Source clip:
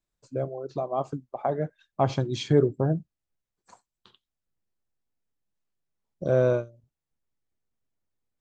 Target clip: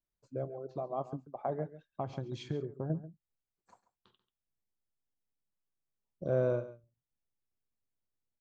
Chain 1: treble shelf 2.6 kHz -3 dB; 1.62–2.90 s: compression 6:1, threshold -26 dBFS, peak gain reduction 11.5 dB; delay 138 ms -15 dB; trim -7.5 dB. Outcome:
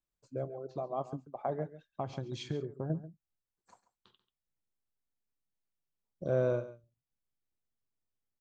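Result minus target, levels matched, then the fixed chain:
4 kHz band +4.0 dB
treble shelf 2.6 kHz -9.5 dB; 1.62–2.90 s: compression 6:1, threshold -26 dBFS, peak gain reduction 11.5 dB; delay 138 ms -15 dB; trim -7.5 dB

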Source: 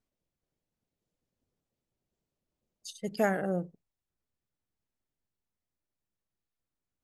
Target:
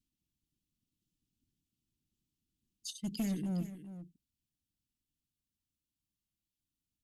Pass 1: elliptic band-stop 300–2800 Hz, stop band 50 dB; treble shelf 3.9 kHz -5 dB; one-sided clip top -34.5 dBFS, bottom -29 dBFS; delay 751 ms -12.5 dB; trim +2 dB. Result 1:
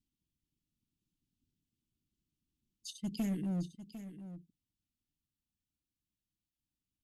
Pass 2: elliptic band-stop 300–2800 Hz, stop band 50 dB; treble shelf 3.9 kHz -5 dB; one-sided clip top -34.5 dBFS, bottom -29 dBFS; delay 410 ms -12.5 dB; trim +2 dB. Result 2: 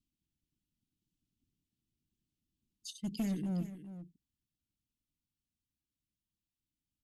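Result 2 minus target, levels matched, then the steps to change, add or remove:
8 kHz band -4.0 dB
remove: treble shelf 3.9 kHz -5 dB

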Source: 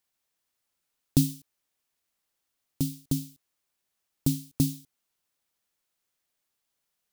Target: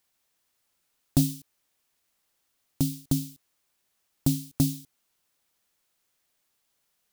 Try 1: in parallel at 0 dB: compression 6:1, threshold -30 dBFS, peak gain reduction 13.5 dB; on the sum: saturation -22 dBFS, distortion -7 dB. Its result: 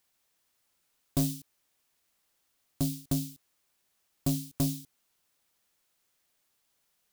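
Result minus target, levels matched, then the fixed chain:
saturation: distortion +10 dB
in parallel at 0 dB: compression 6:1, threshold -30 dBFS, peak gain reduction 13.5 dB; on the sum: saturation -11 dBFS, distortion -17 dB

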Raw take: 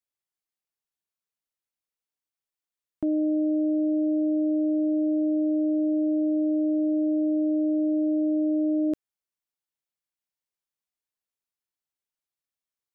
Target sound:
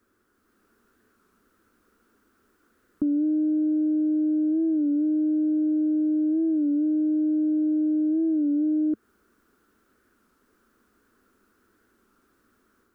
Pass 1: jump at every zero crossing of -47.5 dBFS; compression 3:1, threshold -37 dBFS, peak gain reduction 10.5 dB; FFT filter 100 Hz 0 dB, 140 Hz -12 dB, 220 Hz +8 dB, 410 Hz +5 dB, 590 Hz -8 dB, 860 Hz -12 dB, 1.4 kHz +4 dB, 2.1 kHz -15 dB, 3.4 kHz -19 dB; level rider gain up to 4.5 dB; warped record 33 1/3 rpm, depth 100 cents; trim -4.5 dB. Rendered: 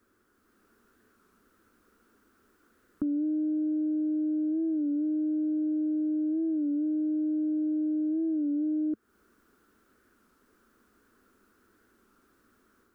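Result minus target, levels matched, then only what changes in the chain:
compression: peak gain reduction +5.5 dB
change: compression 3:1, threshold -29 dBFS, peak gain reduction 5.5 dB

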